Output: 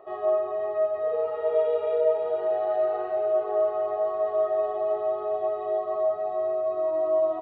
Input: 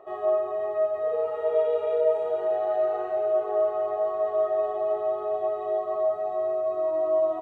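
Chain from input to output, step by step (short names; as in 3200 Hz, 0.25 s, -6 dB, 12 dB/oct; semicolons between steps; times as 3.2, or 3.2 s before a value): downsampling 11025 Hz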